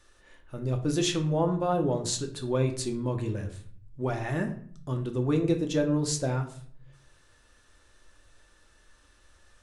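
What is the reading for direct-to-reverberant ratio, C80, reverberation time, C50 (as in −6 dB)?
3.0 dB, 14.5 dB, 0.50 s, 11.0 dB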